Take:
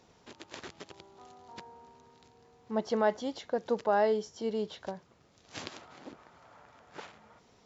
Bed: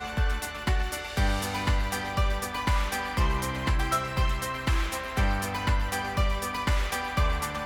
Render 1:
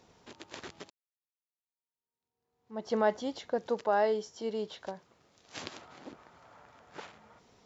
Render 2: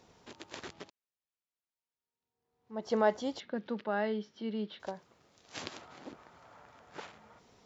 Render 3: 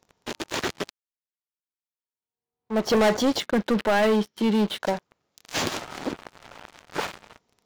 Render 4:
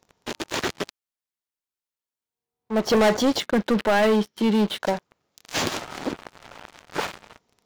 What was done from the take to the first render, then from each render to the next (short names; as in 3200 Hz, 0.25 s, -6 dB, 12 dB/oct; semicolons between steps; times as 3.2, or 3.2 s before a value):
0.9–2.94 fade in exponential; 3.67–5.62 low shelf 210 Hz -7.5 dB
0.73–2.83 air absorption 61 m; 3.4–4.8 speaker cabinet 160–3800 Hz, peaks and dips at 210 Hz +7 dB, 470 Hz -8 dB, 720 Hz -10 dB, 1000 Hz -8 dB
sample leveller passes 5
gain +1.5 dB